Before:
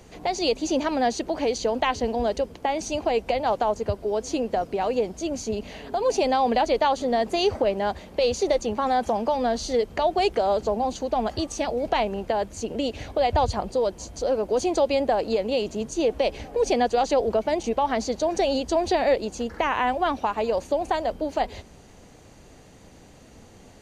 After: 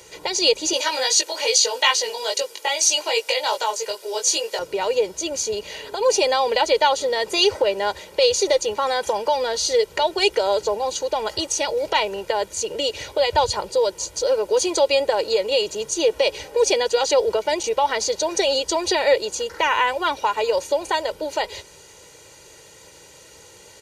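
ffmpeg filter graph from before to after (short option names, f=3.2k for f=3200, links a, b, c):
-filter_complex "[0:a]asettb=1/sr,asplit=3[a][b][c];[a]atrim=end=0.734[d];[b]atrim=start=0.73:end=4.59,asetpts=PTS-STARTPTS,afade=t=in:d=0.004:c=qsin,afade=t=out:st=3.856:d=0.004:c=qsin,highpass=420,highshelf=f=2.3k:g=11.5,flanger=delay=17.5:depth=2.5:speed=2.4[e];[c]atrim=start=4.586[f];[d][e]acrossfade=d=0.004:c1=hsin:c2=qsin[g];[g][f]acrossfade=d=0.004:c1=qsin:c2=hsin,highpass=f=260:p=1,highshelf=f=2.1k:g=10.5,aecho=1:1:2.1:0.83"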